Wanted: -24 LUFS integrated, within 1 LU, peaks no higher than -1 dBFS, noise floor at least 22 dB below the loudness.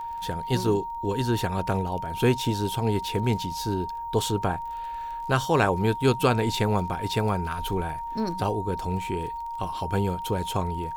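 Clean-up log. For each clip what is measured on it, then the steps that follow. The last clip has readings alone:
ticks 22/s; steady tone 930 Hz; tone level -31 dBFS; loudness -27.0 LUFS; peak -8.5 dBFS; loudness target -24.0 LUFS
-> de-click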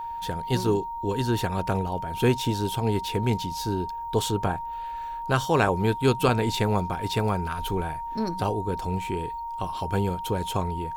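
ticks 0.36/s; steady tone 930 Hz; tone level -31 dBFS
-> notch 930 Hz, Q 30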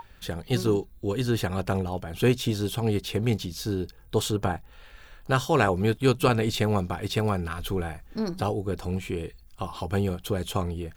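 steady tone none; loudness -27.5 LUFS; peak -8.5 dBFS; loudness target -24.0 LUFS
-> gain +3.5 dB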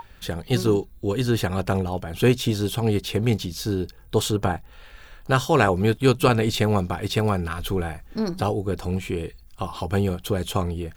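loudness -24.0 LUFS; peak -5.0 dBFS; noise floor -48 dBFS

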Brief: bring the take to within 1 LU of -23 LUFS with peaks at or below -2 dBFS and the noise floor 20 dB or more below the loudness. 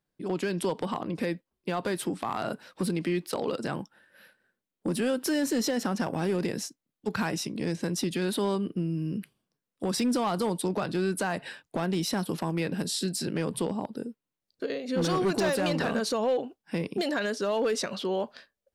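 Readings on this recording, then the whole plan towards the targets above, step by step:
clipped 0.9%; flat tops at -21.0 dBFS; loudness -30.0 LUFS; peak -21.0 dBFS; loudness target -23.0 LUFS
-> clip repair -21 dBFS; gain +7 dB

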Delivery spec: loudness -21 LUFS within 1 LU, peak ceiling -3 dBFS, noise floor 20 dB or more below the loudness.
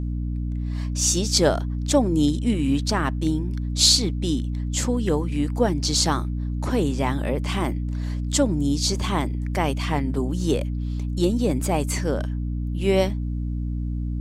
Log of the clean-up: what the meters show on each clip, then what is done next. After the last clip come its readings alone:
hum 60 Hz; harmonics up to 300 Hz; hum level -24 dBFS; loudness -23.5 LUFS; peak -4.0 dBFS; loudness target -21.0 LUFS
-> de-hum 60 Hz, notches 5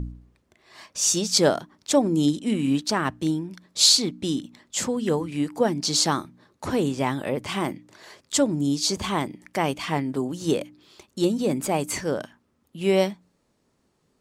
hum none; loudness -24.0 LUFS; peak -4.5 dBFS; loudness target -21.0 LUFS
-> gain +3 dB; limiter -3 dBFS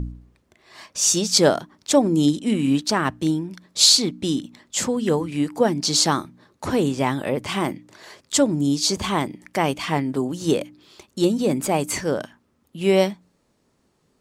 loudness -21.0 LUFS; peak -3.0 dBFS; noise floor -66 dBFS

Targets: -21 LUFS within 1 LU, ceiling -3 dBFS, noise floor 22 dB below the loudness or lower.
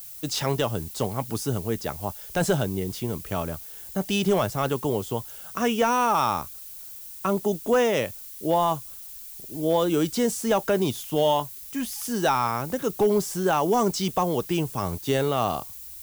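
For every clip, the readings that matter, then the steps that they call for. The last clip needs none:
clipped 0.2%; flat tops at -13.5 dBFS; noise floor -41 dBFS; noise floor target -48 dBFS; loudness -25.5 LUFS; peak -13.5 dBFS; loudness target -21.0 LUFS
-> clip repair -13.5 dBFS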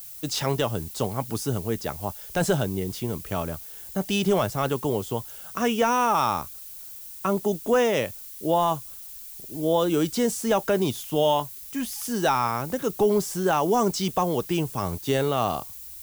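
clipped 0.0%; noise floor -41 dBFS; noise floor target -48 dBFS
-> noise print and reduce 7 dB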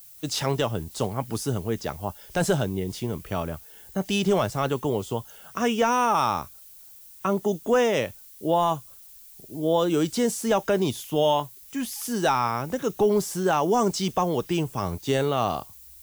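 noise floor -48 dBFS; loudness -25.5 LUFS; peak -11.5 dBFS; loudness target -21.0 LUFS
-> gain +4.5 dB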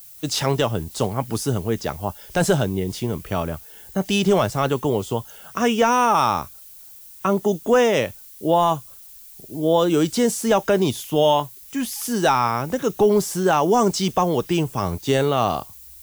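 loudness -21.0 LUFS; peak -7.0 dBFS; noise floor -44 dBFS

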